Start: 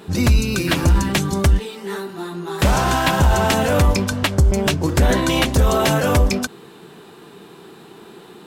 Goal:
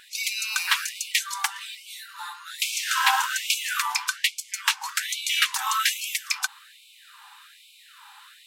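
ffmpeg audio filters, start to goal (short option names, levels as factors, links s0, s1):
-af "afftfilt=real='re*gte(b*sr/1024,750*pow(2200/750,0.5+0.5*sin(2*PI*1.2*pts/sr)))':imag='im*gte(b*sr/1024,750*pow(2200/750,0.5+0.5*sin(2*PI*1.2*pts/sr)))':win_size=1024:overlap=0.75"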